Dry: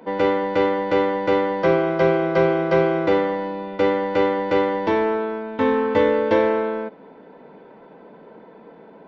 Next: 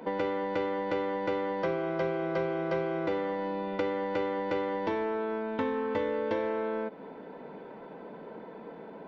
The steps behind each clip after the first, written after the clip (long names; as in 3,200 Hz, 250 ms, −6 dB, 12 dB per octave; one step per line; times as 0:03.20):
downward compressor 4 to 1, threshold −30 dBFS, peak gain reduction 14.5 dB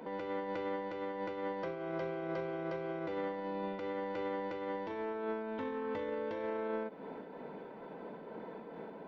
brickwall limiter −28.5 dBFS, peak gain reduction 10 dB
amplitude modulation by smooth noise, depth 50%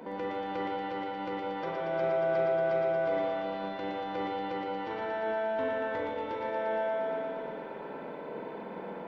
feedback echo with a high-pass in the loop 117 ms, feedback 82%, high-pass 370 Hz, level −3.5 dB
convolution reverb RT60 2.8 s, pre-delay 47 ms, DRR −1 dB
level +2 dB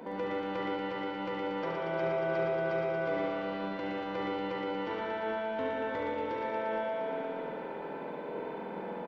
single-tap delay 72 ms −6 dB